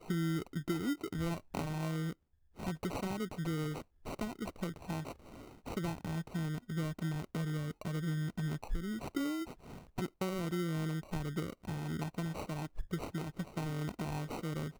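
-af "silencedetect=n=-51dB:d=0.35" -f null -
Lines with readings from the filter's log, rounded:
silence_start: 2.13
silence_end: 2.57 | silence_duration: 0.44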